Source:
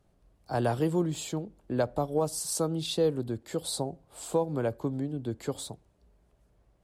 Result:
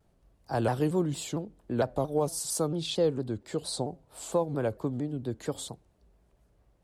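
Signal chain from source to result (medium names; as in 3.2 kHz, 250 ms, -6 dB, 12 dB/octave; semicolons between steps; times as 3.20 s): 2.67–3.90 s: peaking EQ 12 kHz -13 dB 0.37 oct; vibrato with a chosen wave saw down 4.4 Hz, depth 160 cents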